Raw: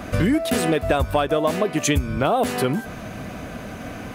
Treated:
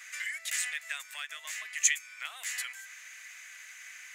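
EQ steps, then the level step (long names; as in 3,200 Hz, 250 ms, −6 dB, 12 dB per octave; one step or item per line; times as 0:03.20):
four-pole ladder high-pass 1,800 Hz, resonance 70%
high-shelf EQ 4,400 Hz +6 dB
parametric band 7,000 Hz +14.5 dB 0.5 octaves
−3.0 dB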